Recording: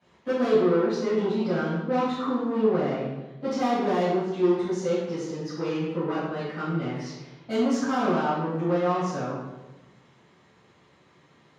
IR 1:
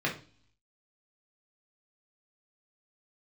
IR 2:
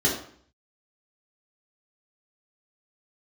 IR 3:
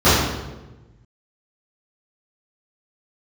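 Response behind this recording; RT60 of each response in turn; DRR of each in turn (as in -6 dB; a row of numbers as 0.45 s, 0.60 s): 3; 0.40 s, 0.55 s, 1.1 s; -3.5 dB, -6.0 dB, -16.5 dB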